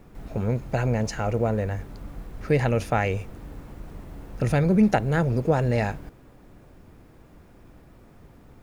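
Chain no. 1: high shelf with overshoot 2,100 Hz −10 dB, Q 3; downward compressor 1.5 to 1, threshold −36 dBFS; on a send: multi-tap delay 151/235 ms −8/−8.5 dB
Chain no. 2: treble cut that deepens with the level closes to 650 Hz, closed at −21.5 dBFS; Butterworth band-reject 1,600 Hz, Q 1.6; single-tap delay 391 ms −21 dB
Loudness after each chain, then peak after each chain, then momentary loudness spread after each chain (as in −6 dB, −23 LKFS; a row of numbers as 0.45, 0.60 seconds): −30.0, −25.5 LKFS; −12.5, −9.5 dBFS; 15, 21 LU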